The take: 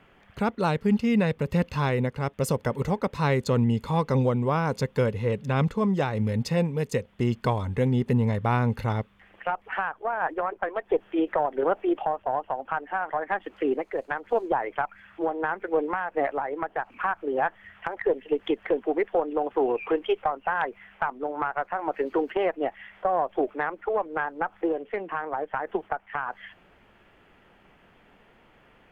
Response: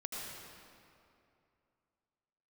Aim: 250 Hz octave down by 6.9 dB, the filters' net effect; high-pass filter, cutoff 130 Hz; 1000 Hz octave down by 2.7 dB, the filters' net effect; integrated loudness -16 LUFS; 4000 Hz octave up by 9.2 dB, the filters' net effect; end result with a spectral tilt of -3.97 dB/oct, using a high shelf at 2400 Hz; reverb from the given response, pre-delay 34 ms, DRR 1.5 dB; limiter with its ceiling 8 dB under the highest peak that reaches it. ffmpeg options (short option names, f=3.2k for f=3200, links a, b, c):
-filter_complex "[0:a]highpass=130,equalizer=f=250:t=o:g=-9,equalizer=f=1k:t=o:g=-4.5,highshelf=f=2.4k:g=7.5,equalizer=f=4k:t=o:g=5.5,alimiter=limit=-18dB:level=0:latency=1,asplit=2[a][b];[1:a]atrim=start_sample=2205,adelay=34[c];[b][c]afir=irnorm=-1:irlink=0,volume=-2.5dB[d];[a][d]amix=inputs=2:normalize=0,volume=12.5dB"